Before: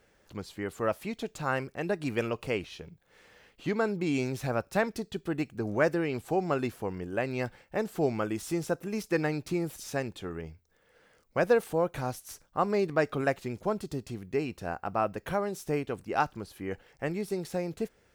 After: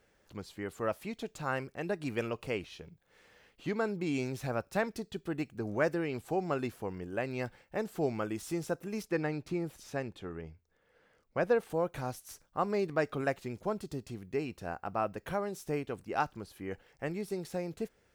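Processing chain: 9.05–11.7 high shelf 5100 Hz -9.5 dB; gain -4 dB

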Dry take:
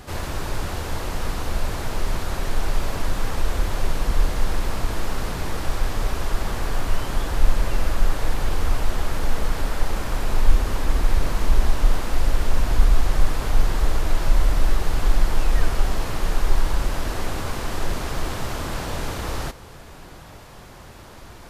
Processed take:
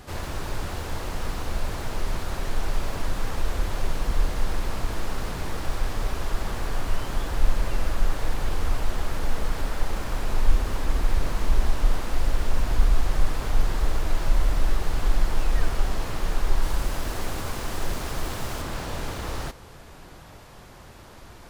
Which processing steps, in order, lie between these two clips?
tracing distortion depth 0.028 ms; 16.62–18.62 high shelf 7000 Hz +6 dB; gain -3.5 dB

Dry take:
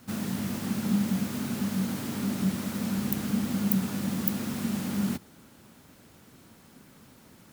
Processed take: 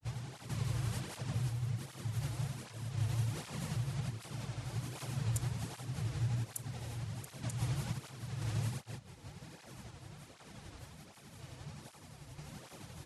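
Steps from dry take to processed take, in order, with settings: compressor 6:1, threshold -40 dBFS, peak gain reduction 18.5 dB; grains, pitch spread up and down by 0 st; random-step tremolo; speed mistake 78 rpm record played at 45 rpm; tape flanging out of phase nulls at 1.3 Hz, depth 5.5 ms; gain +10 dB

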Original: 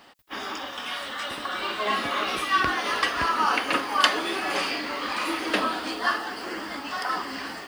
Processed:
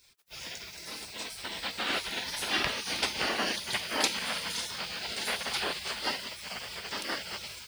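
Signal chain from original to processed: spectral gate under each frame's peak -15 dB weak; gain +2.5 dB

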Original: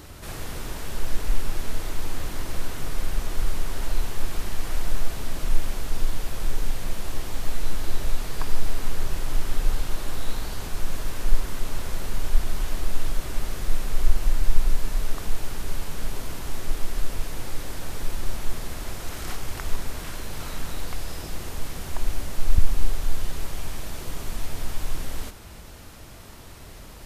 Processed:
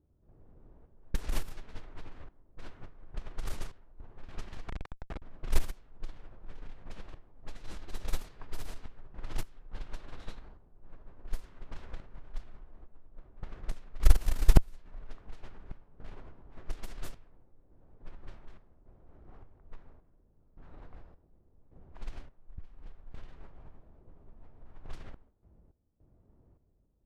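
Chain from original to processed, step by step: 4.68–5.22 infinite clipping; random-step tremolo, depth 85%; low-pass opened by the level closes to 410 Hz, open at -13 dBFS; added harmonics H 3 -11 dB, 8 -40 dB, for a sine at -3.5 dBFS; gain +1 dB

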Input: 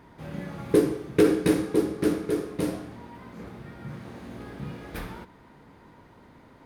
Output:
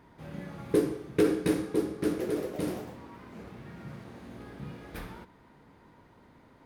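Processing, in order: 1.99–4.22 echoes that change speed 0.174 s, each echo +3 st, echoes 3, each echo -6 dB; gain -5 dB

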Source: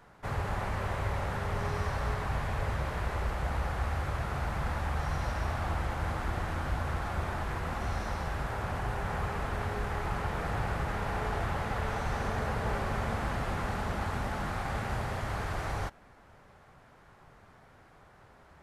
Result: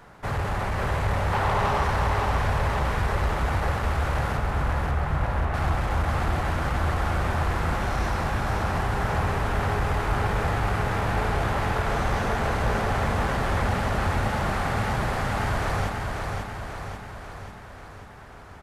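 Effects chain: 1.33–1.84 bell 900 Hz +11.5 dB 1.3 oct; soft clip -28 dBFS, distortion -15 dB; 4.37–5.54 air absorption 410 m; feedback echo 0.54 s, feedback 58%, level -4 dB; gain +8 dB

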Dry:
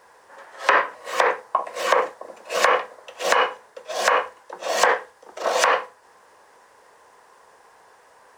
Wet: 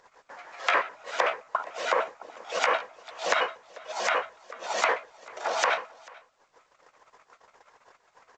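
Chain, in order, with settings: trilling pitch shifter +4.5 st, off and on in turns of 74 ms; gate -49 dBFS, range -41 dB; upward compressor, threshold -32 dBFS; echo 0.44 s -24 dB; gain -6 dB; A-law 128 kbps 16000 Hz

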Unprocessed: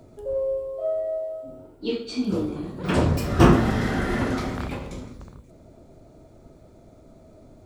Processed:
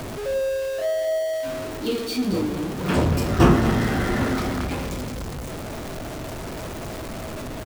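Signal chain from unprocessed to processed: zero-crossing step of -26.5 dBFS; echo 0.23 s -11.5 dB; gain -1 dB

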